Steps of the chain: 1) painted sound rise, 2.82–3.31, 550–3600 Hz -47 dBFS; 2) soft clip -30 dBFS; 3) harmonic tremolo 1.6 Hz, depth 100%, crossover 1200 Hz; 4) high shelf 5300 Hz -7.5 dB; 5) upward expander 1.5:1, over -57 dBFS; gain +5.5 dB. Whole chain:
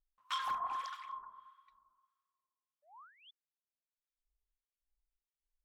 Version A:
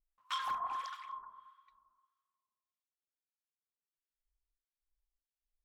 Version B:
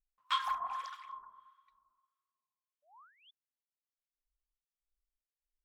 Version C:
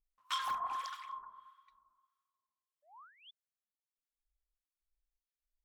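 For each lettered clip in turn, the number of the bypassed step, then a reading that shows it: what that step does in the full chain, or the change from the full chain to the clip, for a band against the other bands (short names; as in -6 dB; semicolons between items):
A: 1, momentary loudness spread change -6 LU; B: 2, distortion -10 dB; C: 4, 8 kHz band +4.5 dB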